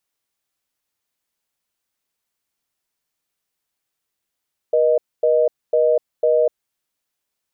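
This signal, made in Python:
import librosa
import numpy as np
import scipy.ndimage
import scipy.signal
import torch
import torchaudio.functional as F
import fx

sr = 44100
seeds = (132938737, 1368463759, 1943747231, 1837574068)

y = fx.call_progress(sr, length_s=1.86, kind='reorder tone', level_db=-15.5)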